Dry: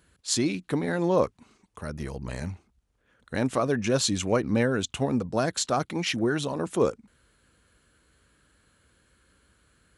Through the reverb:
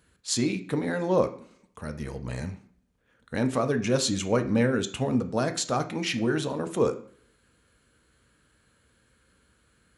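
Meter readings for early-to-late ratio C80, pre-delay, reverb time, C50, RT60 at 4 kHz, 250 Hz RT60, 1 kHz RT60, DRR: 17.5 dB, 3 ms, 0.55 s, 14.0 dB, 0.45 s, 0.60 s, 0.55 s, 7.0 dB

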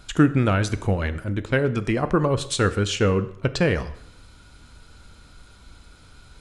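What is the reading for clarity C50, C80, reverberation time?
15.5 dB, 17.5 dB, 0.75 s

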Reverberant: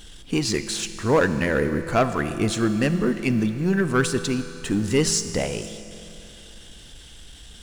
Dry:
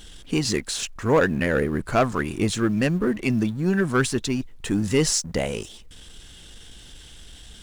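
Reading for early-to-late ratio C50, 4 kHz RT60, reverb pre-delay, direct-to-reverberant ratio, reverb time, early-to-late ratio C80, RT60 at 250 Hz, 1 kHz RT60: 10.5 dB, 3.0 s, 36 ms, 10.0 dB, 3.0 s, 11.0 dB, 3.0 s, 3.0 s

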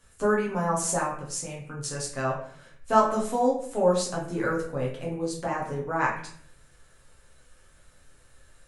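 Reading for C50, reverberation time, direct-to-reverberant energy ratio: 5.0 dB, 0.60 s, −5.0 dB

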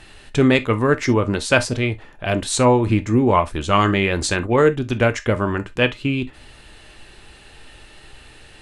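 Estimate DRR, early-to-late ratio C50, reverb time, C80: 9.0 dB, 19.5 dB, non-exponential decay, 60.0 dB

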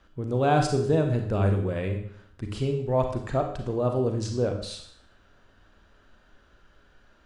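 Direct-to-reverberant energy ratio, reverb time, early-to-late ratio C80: 4.0 dB, 0.60 s, 9.5 dB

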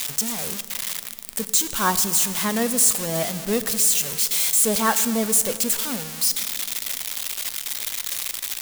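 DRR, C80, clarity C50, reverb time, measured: 11.5 dB, 13.5 dB, 13.0 dB, 2.5 s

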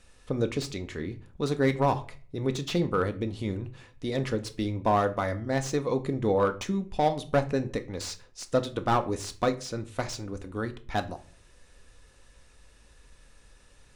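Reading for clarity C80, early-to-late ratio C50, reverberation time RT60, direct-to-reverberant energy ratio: 21.5 dB, 16.5 dB, 0.40 s, 7.5 dB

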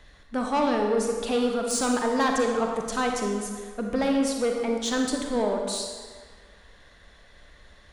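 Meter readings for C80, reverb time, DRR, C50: 4.0 dB, 1.6 s, 1.5 dB, 2.5 dB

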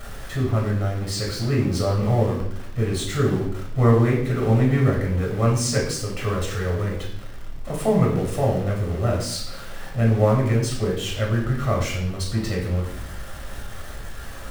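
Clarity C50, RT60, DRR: 5.0 dB, 0.70 s, −2.5 dB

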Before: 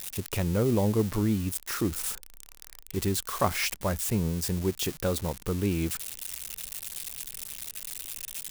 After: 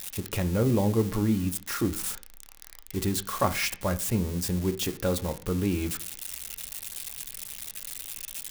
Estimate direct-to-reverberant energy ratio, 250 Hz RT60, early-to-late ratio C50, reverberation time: 7.0 dB, 0.55 s, 17.0 dB, 0.40 s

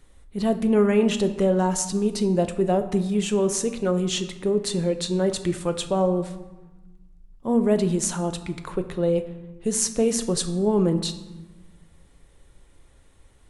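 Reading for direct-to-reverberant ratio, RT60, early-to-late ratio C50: 7.5 dB, 1.1 s, 12.0 dB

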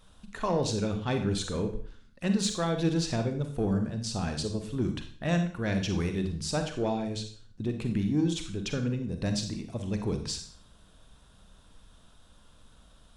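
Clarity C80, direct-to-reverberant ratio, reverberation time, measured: 12.0 dB, 6.0 dB, 0.50 s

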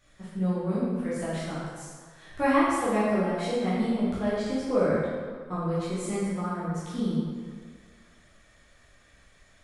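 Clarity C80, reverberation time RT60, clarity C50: 0.0 dB, 1.8 s, −3.0 dB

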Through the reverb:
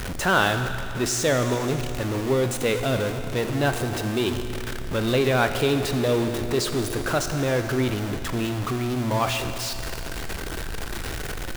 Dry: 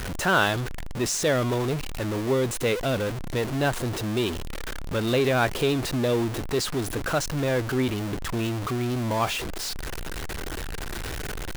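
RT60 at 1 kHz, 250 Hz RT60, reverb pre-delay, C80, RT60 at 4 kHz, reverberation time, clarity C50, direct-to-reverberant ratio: 2.9 s, 2.9 s, 22 ms, 8.5 dB, 2.9 s, 2.9 s, 8.0 dB, 7.0 dB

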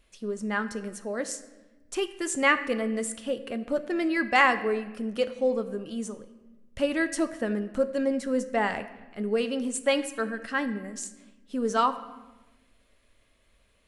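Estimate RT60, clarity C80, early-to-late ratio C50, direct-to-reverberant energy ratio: 1.1 s, 14.5 dB, 13.0 dB, 9.5 dB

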